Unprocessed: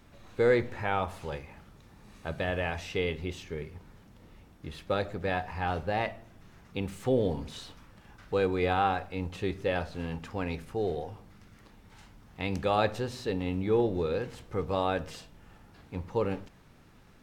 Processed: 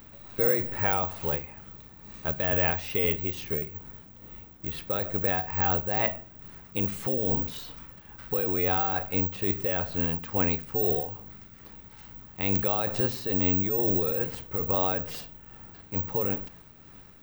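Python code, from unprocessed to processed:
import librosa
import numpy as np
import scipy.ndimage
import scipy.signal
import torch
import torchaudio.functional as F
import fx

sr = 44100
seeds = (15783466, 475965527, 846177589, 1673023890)

p1 = fx.over_compress(x, sr, threshold_db=-31.0, ratio=-0.5)
p2 = x + (p1 * librosa.db_to_amplitude(2.0))
p3 = (np.kron(p2[::2], np.eye(2)[0]) * 2)[:len(p2)]
p4 = p3 * (1.0 - 0.38 / 2.0 + 0.38 / 2.0 * np.cos(2.0 * np.pi * 2.3 * (np.arange(len(p3)) / sr)))
y = p4 * librosa.db_to_amplitude(-3.5)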